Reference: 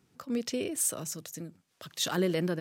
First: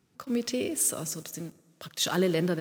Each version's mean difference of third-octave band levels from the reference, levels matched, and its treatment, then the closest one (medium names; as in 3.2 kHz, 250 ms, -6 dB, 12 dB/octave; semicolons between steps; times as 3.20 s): 2.0 dB: plate-style reverb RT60 2.5 s, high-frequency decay 0.6×, DRR 16.5 dB; in parallel at -4 dB: word length cut 8-bit, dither none; on the sum: trim -1.5 dB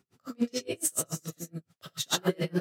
10.5 dB: gated-style reverb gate 140 ms rising, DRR -4 dB; logarithmic tremolo 7 Hz, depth 35 dB; trim +2 dB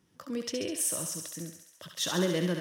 4.5 dB: rippled EQ curve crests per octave 1.2, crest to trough 6 dB; on a send: thinning echo 68 ms, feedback 72%, high-pass 650 Hz, level -5 dB; on the sum: trim -1.5 dB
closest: first